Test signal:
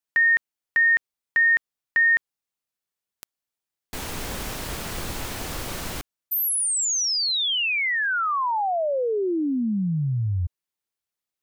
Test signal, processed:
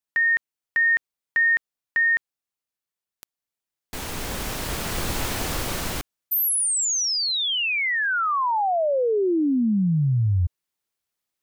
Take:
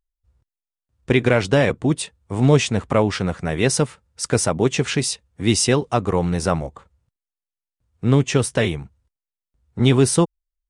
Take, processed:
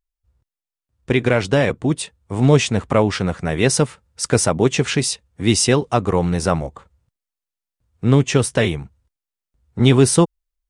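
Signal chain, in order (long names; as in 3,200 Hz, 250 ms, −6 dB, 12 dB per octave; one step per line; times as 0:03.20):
speech leveller within 4 dB 2 s
level +1 dB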